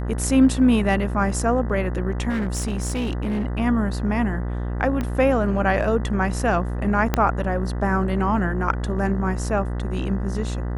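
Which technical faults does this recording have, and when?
buzz 60 Hz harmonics 33 -26 dBFS
2.29–3.45 clipped -20.5 dBFS
5.01 pop -14 dBFS
7.14 pop -5 dBFS

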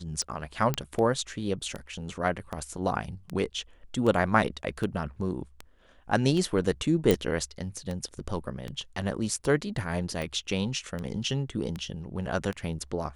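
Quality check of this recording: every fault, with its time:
tick 78 rpm -21 dBFS
0.74 pop -12 dBFS
7.11 pop

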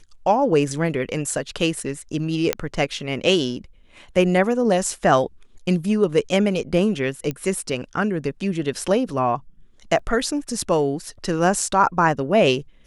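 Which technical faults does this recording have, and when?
2.53 pop -5 dBFS
7.31 pop -14 dBFS
9.99 gap 3.6 ms

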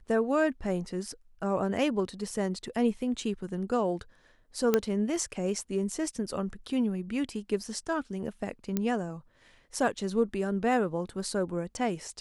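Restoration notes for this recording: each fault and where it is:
4.74 pop -10 dBFS
8.77 pop -15 dBFS

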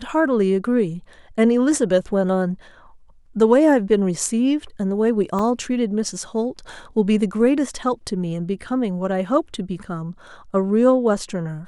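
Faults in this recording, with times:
5.39 gap 3.4 ms

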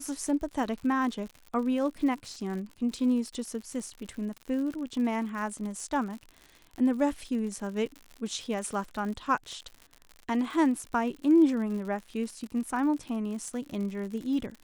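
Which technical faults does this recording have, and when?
crackle 85/s -37 dBFS

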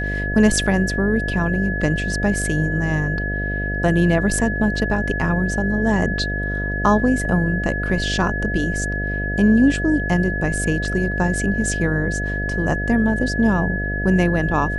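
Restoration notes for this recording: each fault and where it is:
buzz 50 Hz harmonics 14 -25 dBFS
tone 1700 Hz -25 dBFS

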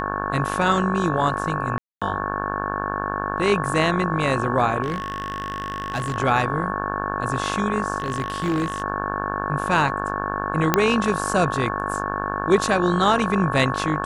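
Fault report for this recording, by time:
buzz 50 Hz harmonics 35 -28 dBFS
tone 1100 Hz -29 dBFS
1.78–2.02 gap 0.236 s
4.82–6.16 clipped -20.5 dBFS
7.98–8.82 clipped -18 dBFS
10.74 pop -1 dBFS

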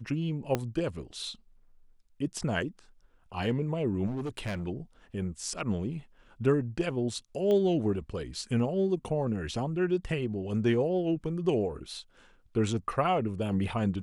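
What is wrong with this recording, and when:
0.55 pop -14 dBFS
4.06–4.67 clipped -30 dBFS
7.51 pop -20 dBFS

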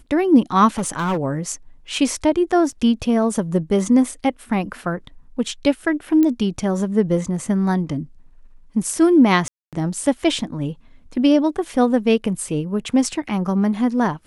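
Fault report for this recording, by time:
0.78–1.19 clipped -17.5 dBFS
2.72–2.73 gap 5.3 ms
6.23 pop -9 dBFS
9.48–9.73 gap 0.247 s

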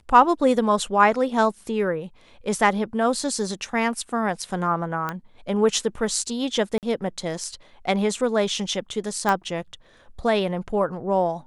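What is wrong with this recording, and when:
5.09 pop -14 dBFS
6.78–6.83 gap 48 ms
9.29 pop -9 dBFS

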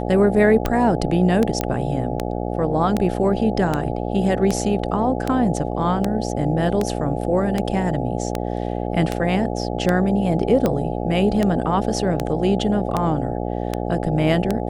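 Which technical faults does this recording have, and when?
buzz 60 Hz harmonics 14 -25 dBFS
tick 78 rpm -7 dBFS
1.61 pop -7 dBFS

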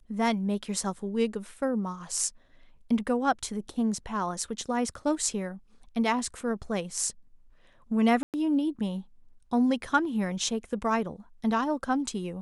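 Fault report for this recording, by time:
8.23–8.34 gap 0.108 s

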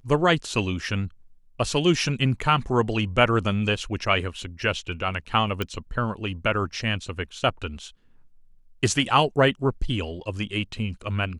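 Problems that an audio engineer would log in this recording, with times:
5.62 pop -13 dBFS

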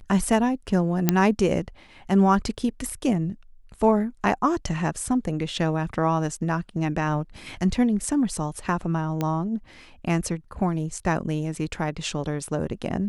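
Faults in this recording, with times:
1.09 pop -3 dBFS
9.21 pop -13 dBFS

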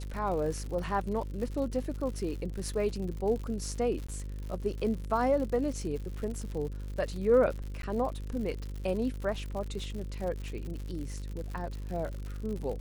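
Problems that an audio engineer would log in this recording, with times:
buzz 50 Hz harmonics 11 -38 dBFS
crackle 110/s -37 dBFS
4.07–4.08 gap 15 ms
7.82–7.83 gap 12 ms

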